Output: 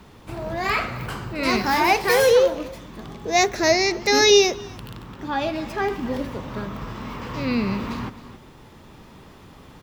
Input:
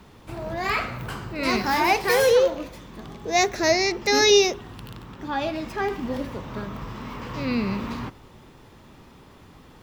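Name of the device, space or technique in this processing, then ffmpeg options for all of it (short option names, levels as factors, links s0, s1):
ducked delay: -filter_complex "[0:a]asplit=3[s0][s1][s2];[s1]adelay=267,volume=0.631[s3];[s2]apad=whole_len=445129[s4];[s3][s4]sidechaincompress=threshold=0.0141:ratio=8:attack=16:release=1220[s5];[s0][s5]amix=inputs=2:normalize=0,volume=1.26"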